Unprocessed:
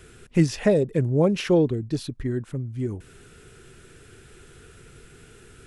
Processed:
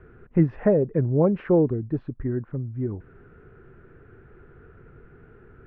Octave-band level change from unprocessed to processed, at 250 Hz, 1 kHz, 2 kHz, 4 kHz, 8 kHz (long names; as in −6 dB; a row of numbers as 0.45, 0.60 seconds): 0.0 dB, 0.0 dB, −7.0 dB, below −20 dB, below −40 dB